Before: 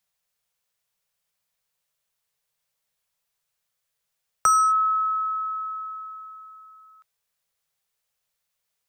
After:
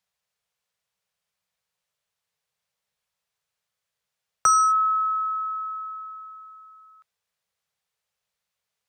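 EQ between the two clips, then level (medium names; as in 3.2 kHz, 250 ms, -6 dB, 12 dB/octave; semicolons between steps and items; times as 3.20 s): high-pass 45 Hz; dynamic bell 5.8 kHz, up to +7 dB, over -41 dBFS, Q 1; treble shelf 9.2 kHz -11.5 dB; 0.0 dB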